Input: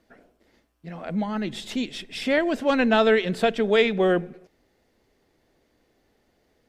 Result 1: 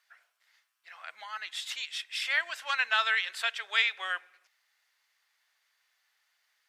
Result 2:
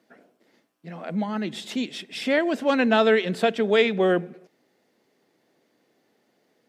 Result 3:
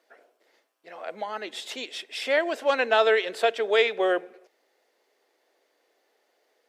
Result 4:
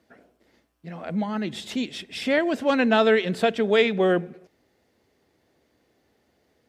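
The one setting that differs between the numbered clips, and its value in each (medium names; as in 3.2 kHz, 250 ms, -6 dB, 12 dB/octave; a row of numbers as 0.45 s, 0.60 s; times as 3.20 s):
high-pass, cutoff frequency: 1.2 kHz, 150 Hz, 420 Hz, 60 Hz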